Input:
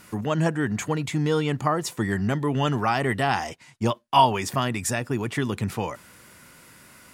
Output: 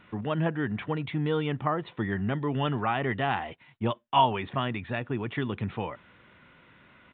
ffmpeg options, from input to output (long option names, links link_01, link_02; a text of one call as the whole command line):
ffmpeg -i in.wav -af "aresample=8000,aresample=44100,volume=-4.5dB" out.wav